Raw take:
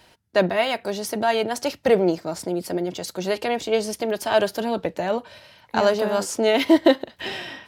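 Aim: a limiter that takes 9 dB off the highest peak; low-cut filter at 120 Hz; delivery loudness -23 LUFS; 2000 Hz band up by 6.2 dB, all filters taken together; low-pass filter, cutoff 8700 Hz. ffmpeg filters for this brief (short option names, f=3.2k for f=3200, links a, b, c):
-af "highpass=120,lowpass=8.7k,equalizer=f=2k:t=o:g=7.5,volume=1dB,alimiter=limit=-9.5dB:level=0:latency=1"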